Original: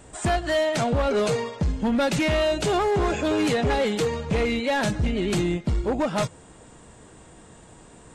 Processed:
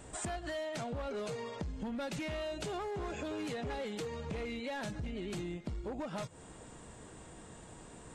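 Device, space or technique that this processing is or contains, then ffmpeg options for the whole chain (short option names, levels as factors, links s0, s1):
serial compression, leveller first: -af "acompressor=threshold=0.0398:ratio=2,acompressor=threshold=0.02:ratio=6,volume=0.668"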